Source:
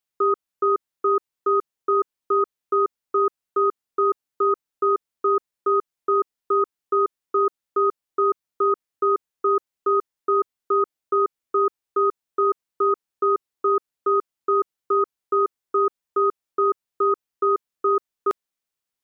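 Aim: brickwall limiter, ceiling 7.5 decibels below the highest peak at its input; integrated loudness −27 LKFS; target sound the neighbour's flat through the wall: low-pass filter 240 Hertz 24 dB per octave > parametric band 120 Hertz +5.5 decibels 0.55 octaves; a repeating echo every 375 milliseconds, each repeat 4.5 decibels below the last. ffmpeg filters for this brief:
ffmpeg -i in.wav -af "alimiter=limit=-20dB:level=0:latency=1,lowpass=frequency=240:width=0.5412,lowpass=frequency=240:width=1.3066,equalizer=frequency=120:width_type=o:width=0.55:gain=5.5,aecho=1:1:375|750|1125|1500|1875|2250|2625|3000|3375:0.596|0.357|0.214|0.129|0.0772|0.0463|0.0278|0.0167|0.01,volume=24dB" out.wav

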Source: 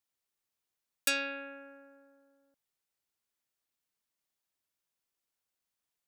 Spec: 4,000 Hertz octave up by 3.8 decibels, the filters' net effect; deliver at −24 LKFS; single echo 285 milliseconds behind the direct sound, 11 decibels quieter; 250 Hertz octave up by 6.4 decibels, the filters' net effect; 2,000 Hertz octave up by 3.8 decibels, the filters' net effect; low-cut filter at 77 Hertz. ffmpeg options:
ffmpeg -i in.wav -af "highpass=77,equalizer=frequency=250:width_type=o:gain=7,equalizer=frequency=2000:width_type=o:gain=4,equalizer=frequency=4000:width_type=o:gain=3.5,aecho=1:1:285:0.282,volume=6.5dB" out.wav

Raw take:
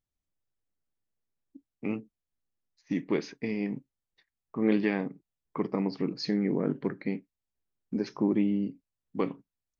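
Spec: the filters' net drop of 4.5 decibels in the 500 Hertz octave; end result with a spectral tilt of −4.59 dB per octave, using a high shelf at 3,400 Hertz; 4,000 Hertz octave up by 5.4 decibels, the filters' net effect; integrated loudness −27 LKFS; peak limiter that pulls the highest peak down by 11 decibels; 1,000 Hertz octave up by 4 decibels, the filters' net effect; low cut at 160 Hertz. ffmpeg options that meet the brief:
ffmpeg -i in.wav -af "highpass=160,equalizer=frequency=500:width_type=o:gain=-7,equalizer=frequency=1000:width_type=o:gain=6.5,highshelf=frequency=3400:gain=-4,equalizer=frequency=4000:width_type=o:gain=9,volume=10.5dB,alimiter=limit=-14.5dB:level=0:latency=1" out.wav

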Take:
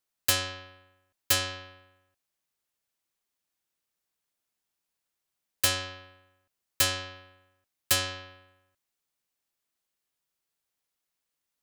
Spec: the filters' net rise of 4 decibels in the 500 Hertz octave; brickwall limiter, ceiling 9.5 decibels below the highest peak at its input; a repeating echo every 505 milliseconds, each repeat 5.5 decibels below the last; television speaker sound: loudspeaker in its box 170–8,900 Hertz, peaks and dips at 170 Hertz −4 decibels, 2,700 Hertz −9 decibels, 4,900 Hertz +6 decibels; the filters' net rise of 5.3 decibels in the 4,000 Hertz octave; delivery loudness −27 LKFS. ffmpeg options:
ffmpeg -i in.wav -af "equalizer=frequency=500:width_type=o:gain=4.5,equalizer=frequency=4000:width_type=o:gain=5.5,alimiter=limit=-17.5dB:level=0:latency=1,highpass=frequency=170:width=0.5412,highpass=frequency=170:width=1.3066,equalizer=frequency=170:width_type=q:width=4:gain=-4,equalizer=frequency=2700:width_type=q:width=4:gain=-9,equalizer=frequency=4900:width_type=q:width=4:gain=6,lowpass=frequency=8900:width=0.5412,lowpass=frequency=8900:width=1.3066,aecho=1:1:505|1010|1515|2020|2525|3030|3535:0.531|0.281|0.149|0.079|0.0419|0.0222|0.0118,volume=5dB" out.wav

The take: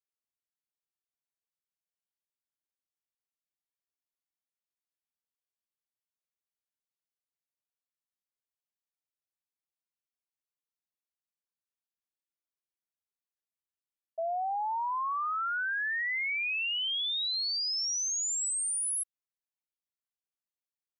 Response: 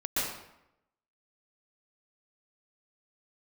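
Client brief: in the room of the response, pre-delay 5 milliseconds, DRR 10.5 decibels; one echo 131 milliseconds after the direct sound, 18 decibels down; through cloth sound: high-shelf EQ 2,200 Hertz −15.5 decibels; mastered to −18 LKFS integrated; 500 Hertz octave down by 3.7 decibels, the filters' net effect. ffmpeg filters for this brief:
-filter_complex "[0:a]equalizer=frequency=500:width_type=o:gain=-4,aecho=1:1:131:0.126,asplit=2[link_01][link_02];[1:a]atrim=start_sample=2205,adelay=5[link_03];[link_02][link_03]afir=irnorm=-1:irlink=0,volume=-19dB[link_04];[link_01][link_04]amix=inputs=2:normalize=0,highshelf=frequency=2200:gain=-15.5,volume=19.5dB"

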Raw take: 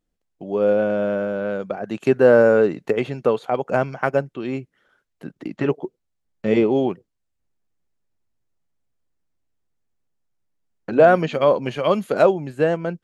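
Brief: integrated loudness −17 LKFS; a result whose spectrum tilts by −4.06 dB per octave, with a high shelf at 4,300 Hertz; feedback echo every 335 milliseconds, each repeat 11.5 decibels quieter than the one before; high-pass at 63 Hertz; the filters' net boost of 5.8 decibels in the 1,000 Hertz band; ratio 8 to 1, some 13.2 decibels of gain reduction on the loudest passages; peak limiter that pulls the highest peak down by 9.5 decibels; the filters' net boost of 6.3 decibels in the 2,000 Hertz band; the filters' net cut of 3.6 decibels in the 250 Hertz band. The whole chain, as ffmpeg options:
ffmpeg -i in.wav -af "highpass=63,equalizer=frequency=250:width_type=o:gain=-5.5,equalizer=frequency=1000:width_type=o:gain=7.5,equalizer=frequency=2000:width_type=o:gain=4,highshelf=frequency=4300:gain=8,acompressor=threshold=-20dB:ratio=8,alimiter=limit=-14.5dB:level=0:latency=1,aecho=1:1:335|670|1005:0.266|0.0718|0.0194,volume=10.5dB" out.wav

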